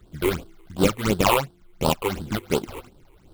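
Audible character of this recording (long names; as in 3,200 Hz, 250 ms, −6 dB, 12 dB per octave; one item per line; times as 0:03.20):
aliases and images of a low sample rate 1,800 Hz, jitter 20%
phaser sweep stages 8, 2.8 Hz, lowest notch 190–2,200 Hz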